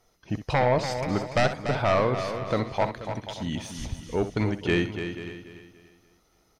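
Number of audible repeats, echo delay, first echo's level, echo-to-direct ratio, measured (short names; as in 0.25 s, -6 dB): 10, 64 ms, -11.5 dB, -5.5 dB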